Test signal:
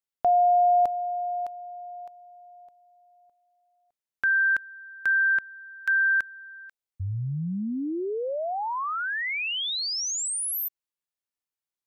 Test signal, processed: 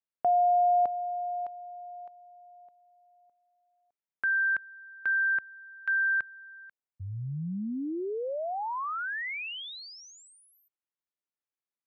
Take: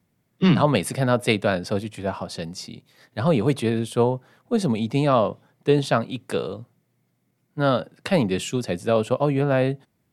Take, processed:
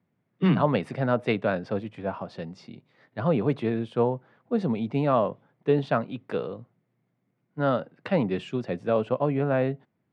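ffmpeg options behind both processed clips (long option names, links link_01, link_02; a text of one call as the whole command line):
ffmpeg -i in.wav -af "highpass=110,lowpass=2300,volume=-3.5dB" out.wav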